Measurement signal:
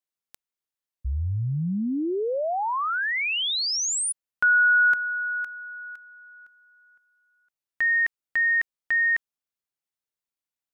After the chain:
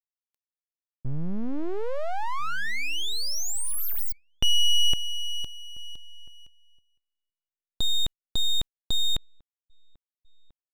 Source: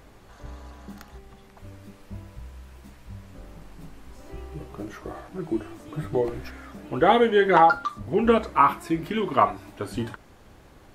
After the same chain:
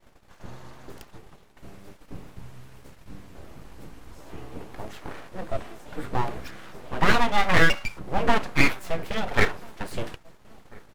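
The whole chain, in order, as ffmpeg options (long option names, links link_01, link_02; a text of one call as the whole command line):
ffmpeg -i in.wav -filter_complex "[0:a]aeval=exprs='abs(val(0))':channel_layout=same,asplit=2[link_01][link_02];[link_02]adelay=1341,volume=-25dB,highshelf=frequency=4000:gain=-30.2[link_03];[link_01][link_03]amix=inputs=2:normalize=0,agate=range=-33dB:threshold=-46dB:ratio=3:release=73:detection=peak,volume=1.5dB" out.wav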